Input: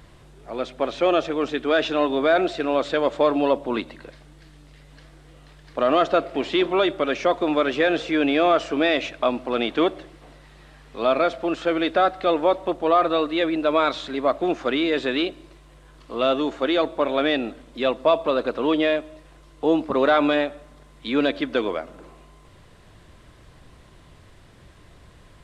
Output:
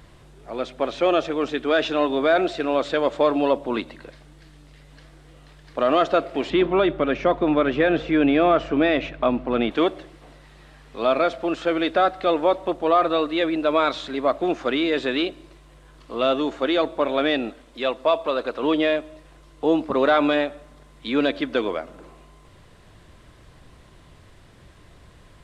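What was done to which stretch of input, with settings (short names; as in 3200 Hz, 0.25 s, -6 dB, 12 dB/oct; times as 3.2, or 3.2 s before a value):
6.5–9.71 tone controls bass +9 dB, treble -13 dB
17.5–18.63 bell 130 Hz -7.5 dB 2.9 oct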